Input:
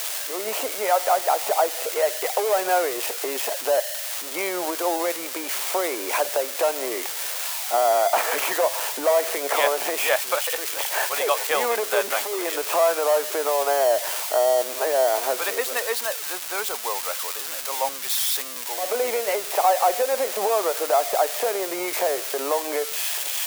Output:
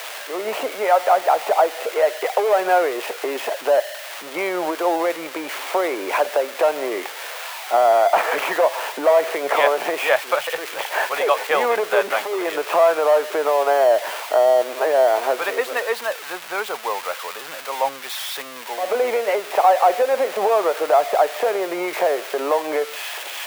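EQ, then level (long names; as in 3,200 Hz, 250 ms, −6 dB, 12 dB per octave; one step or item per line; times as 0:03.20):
bass and treble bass −1 dB, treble −14 dB
parametric band 150 Hz +7 dB 0.29 octaves
+4.5 dB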